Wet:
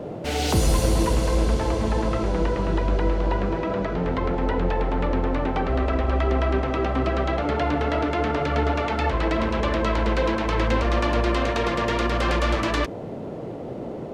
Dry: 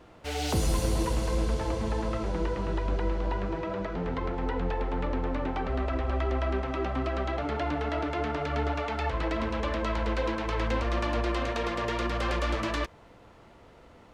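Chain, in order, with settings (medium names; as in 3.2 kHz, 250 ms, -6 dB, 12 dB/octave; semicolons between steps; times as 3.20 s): band noise 95–620 Hz -40 dBFS; trim +6.5 dB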